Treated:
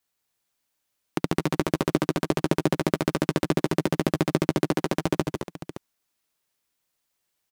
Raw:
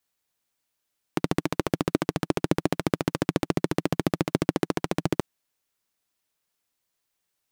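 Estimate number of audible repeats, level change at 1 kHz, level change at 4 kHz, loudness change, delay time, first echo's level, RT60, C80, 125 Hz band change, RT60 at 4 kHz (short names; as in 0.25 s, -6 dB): 3, +1.5 dB, +2.0 dB, +1.5 dB, 0.154 s, -6.5 dB, none, none, +2.0 dB, none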